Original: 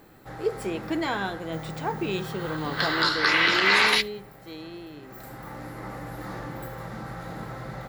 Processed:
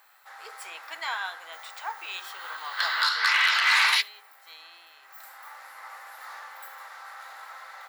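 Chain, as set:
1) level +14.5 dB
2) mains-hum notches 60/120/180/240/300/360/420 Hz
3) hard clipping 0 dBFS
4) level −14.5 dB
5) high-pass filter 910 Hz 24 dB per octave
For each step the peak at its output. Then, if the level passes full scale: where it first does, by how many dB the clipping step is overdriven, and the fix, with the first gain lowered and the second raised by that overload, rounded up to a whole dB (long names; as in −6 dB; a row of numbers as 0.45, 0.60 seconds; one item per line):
+6.0, +6.0, 0.0, −14.5, −10.0 dBFS
step 1, 6.0 dB
step 1 +8.5 dB, step 4 −8.5 dB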